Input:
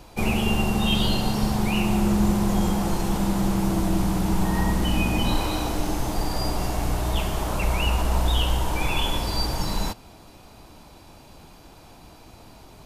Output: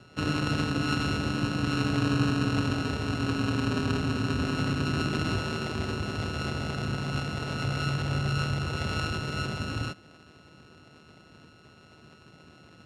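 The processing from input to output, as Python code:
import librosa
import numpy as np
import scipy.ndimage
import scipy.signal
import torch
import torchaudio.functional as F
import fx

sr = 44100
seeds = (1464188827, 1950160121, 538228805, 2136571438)

y = np.r_[np.sort(x[:len(x) // 32 * 32].reshape(-1, 32), axis=1).ravel(), x[len(x) // 32 * 32:]]
y = fx.peak_eq(y, sr, hz=870.0, db=-5.0, octaves=0.93)
y = y * np.sin(2.0 * np.pi * 78.0 * np.arange(len(y)) / sr)
y = fx.bandpass_edges(y, sr, low_hz=110.0, high_hz=4700.0)
y = fx.peak_eq(y, sr, hz=1800.0, db=-2.0, octaves=1.4)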